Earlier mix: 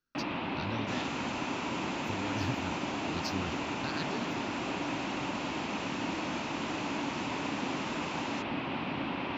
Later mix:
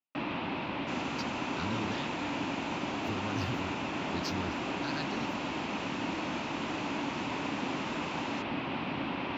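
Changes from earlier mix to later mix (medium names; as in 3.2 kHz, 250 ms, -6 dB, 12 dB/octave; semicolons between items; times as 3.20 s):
speech: entry +1.00 s; second sound: add treble shelf 5.8 kHz -6 dB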